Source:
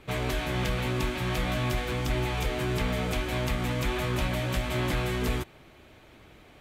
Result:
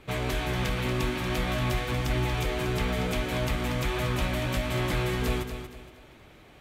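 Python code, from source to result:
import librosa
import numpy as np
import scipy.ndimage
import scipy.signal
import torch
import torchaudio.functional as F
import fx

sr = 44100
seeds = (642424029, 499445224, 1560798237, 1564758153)

y = fx.echo_feedback(x, sr, ms=234, feedback_pct=33, wet_db=-9.0)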